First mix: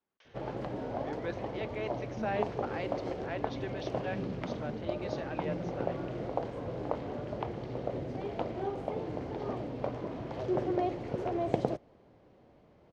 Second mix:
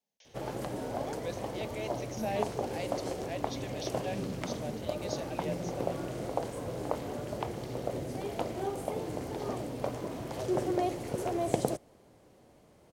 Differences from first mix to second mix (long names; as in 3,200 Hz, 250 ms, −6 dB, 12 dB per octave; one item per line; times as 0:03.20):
speech: add phaser with its sweep stopped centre 340 Hz, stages 6
master: remove high-frequency loss of the air 230 metres